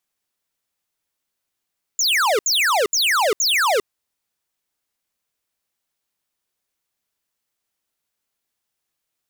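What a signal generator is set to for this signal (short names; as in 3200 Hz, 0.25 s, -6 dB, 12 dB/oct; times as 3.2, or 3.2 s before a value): burst of laser zaps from 7400 Hz, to 380 Hz, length 0.40 s square, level -17.5 dB, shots 4, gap 0.07 s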